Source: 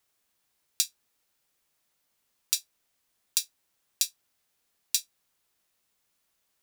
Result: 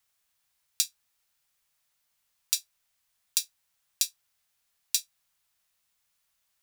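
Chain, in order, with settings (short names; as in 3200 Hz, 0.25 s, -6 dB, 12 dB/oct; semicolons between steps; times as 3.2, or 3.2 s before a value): bell 330 Hz -13.5 dB 1.5 oct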